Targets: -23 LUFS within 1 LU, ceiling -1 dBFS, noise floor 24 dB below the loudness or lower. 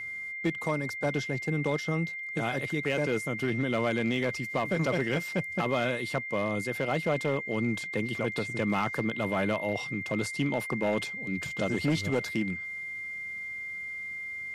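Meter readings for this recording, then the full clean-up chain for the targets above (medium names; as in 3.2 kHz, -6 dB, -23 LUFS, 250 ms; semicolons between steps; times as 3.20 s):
clipped samples 0.6%; clipping level -20.5 dBFS; steady tone 2.1 kHz; tone level -35 dBFS; loudness -30.5 LUFS; peak level -20.5 dBFS; loudness target -23.0 LUFS
-> clip repair -20.5 dBFS; band-stop 2.1 kHz, Q 30; trim +7.5 dB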